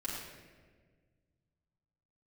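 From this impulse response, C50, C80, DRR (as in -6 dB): 0.5 dB, 2.0 dB, -7.0 dB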